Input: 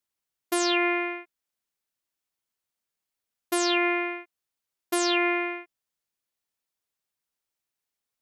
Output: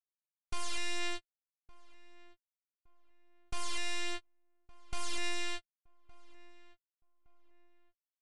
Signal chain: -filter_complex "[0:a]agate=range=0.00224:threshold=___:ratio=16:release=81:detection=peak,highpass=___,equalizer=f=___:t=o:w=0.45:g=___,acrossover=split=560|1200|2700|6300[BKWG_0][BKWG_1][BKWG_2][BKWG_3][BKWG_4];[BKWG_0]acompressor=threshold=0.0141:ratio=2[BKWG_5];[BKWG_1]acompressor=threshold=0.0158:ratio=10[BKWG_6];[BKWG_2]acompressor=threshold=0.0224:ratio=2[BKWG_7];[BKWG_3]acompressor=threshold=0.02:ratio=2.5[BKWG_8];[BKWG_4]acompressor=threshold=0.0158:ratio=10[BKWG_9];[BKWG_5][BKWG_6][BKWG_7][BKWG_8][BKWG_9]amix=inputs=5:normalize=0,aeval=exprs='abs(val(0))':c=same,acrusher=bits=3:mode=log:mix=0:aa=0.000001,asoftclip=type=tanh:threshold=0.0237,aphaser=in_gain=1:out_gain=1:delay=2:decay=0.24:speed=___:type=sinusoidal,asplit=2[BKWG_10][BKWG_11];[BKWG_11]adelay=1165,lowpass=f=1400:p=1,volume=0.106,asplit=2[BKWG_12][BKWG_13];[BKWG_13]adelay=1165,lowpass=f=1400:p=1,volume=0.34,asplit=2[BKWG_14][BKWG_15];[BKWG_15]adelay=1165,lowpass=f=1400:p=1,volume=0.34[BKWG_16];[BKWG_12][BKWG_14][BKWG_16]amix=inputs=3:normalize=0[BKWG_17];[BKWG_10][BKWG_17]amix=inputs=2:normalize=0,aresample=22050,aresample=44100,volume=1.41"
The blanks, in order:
0.0158, 420, 730, -2, 0.95